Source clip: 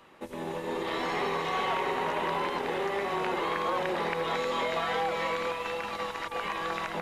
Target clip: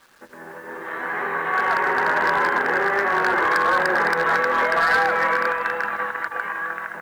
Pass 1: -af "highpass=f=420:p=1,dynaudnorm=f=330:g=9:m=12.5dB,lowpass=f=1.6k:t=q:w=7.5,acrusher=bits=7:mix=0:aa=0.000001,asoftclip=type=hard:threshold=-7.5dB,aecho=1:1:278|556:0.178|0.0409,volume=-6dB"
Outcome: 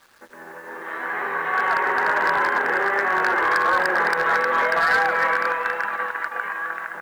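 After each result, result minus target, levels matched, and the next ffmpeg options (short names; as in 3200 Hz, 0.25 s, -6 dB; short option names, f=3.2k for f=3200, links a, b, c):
echo 0.119 s late; 125 Hz band -4.0 dB
-af "highpass=f=420:p=1,dynaudnorm=f=330:g=9:m=12.5dB,lowpass=f=1.6k:t=q:w=7.5,acrusher=bits=7:mix=0:aa=0.000001,asoftclip=type=hard:threshold=-7.5dB,aecho=1:1:159|318:0.178|0.0409,volume=-6dB"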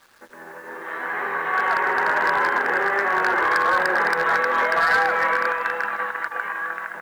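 125 Hz band -4.5 dB
-af "highpass=f=170:p=1,dynaudnorm=f=330:g=9:m=12.5dB,lowpass=f=1.6k:t=q:w=7.5,acrusher=bits=7:mix=0:aa=0.000001,asoftclip=type=hard:threshold=-7.5dB,aecho=1:1:159|318:0.178|0.0409,volume=-6dB"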